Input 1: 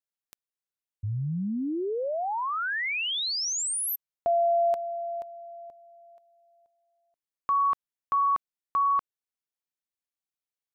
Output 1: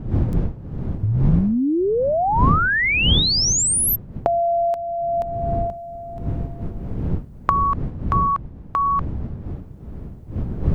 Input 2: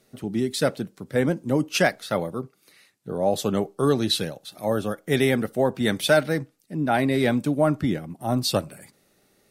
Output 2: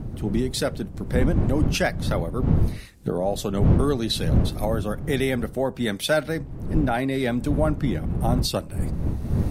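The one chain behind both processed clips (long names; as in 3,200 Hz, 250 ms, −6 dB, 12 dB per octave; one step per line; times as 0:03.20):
camcorder AGC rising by 20 dB per second, up to +22 dB
wind on the microphone 140 Hz −22 dBFS
level −3 dB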